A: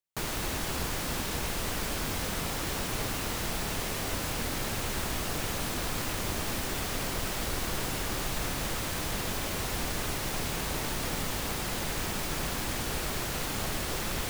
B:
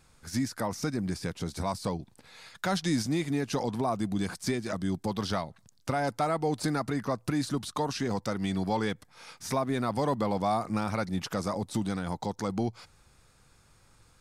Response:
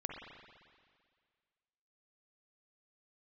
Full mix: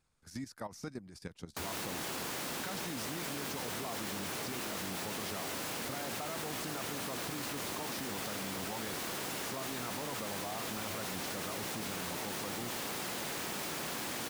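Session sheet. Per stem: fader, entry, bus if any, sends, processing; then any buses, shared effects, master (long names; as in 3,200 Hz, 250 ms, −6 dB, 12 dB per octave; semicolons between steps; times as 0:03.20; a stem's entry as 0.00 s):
−2.5 dB, 1.40 s, no send, high-pass filter 190 Hz 12 dB per octave
−7.5 dB, 0.00 s, no send, harmonic and percussive parts rebalanced harmonic −4 dB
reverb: not used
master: output level in coarse steps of 13 dB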